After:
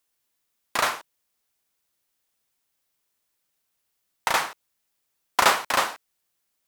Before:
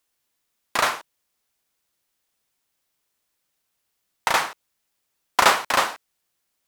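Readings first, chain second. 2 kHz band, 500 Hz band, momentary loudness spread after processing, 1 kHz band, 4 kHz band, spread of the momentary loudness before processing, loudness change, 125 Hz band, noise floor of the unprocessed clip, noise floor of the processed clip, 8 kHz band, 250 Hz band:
-2.5 dB, -2.5 dB, 12 LU, -2.5 dB, -2.0 dB, 12 LU, -2.5 dB, -2.5 dB, -76 dBFS, -77 dBFS, -1.5 dB, -2.5 dB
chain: high shelf 9800 Hz +3.5 dB; gain -2.5 dB

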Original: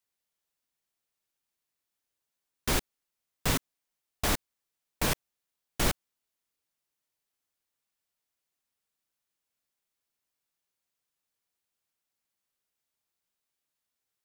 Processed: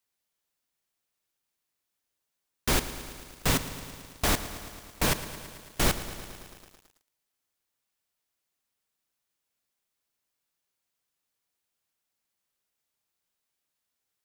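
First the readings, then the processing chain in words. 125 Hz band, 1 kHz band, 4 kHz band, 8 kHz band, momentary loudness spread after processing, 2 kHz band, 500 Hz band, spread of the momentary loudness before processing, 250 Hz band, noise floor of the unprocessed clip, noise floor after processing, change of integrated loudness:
+3.0 dB, +3.0 dB, +3.0 dB, +3.0 dB, 16 LU, +3.0 dB, +3.0 dB, 6 LU, +3.0 dB, under -85 dBFS, -84 dBFS, +2.0 dB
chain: lo-fi delay 0.11 s, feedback 80%, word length 8-bit, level -13 dB; gain +2.5 dB

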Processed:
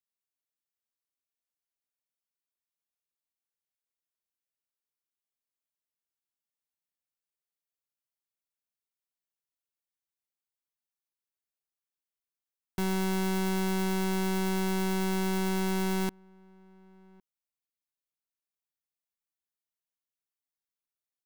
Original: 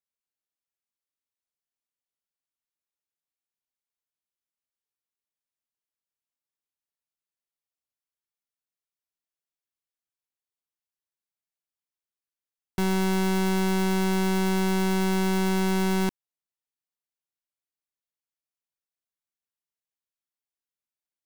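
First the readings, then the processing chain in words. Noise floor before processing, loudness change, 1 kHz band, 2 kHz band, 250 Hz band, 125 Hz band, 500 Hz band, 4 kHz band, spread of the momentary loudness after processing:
under -85 dBFS, -5.0 dB, -5.0 dB, -5.0 dB, -5.0 dB, -5.0 dB, -5.0 dB, -4.5 dB, 3 LU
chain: high shelf 11000 Hz +5.5 dB; outdoor echo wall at 190 m, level -27 dB; gain -5 dB

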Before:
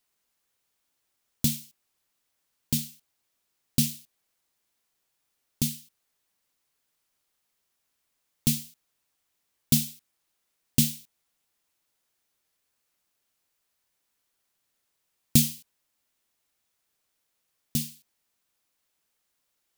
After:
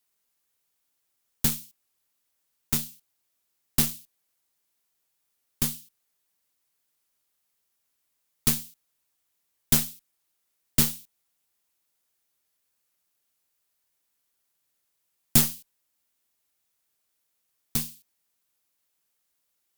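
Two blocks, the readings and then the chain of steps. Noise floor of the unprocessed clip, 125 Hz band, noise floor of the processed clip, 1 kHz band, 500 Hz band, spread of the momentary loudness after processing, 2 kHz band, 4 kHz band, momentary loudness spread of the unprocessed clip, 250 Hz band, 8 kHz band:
-78 dBFS, -3.0 dB, -77 dBFS, n/a, +6.0 dB, 17 LU, +6.0 dB, +0.5 dB, 17 LU, -3.5 dB, +1.5 dB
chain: high shelf 8500 Hz +7 dB; added harmonics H 8 -15 dB, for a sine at 0.5 dBFS; gain -3 dB

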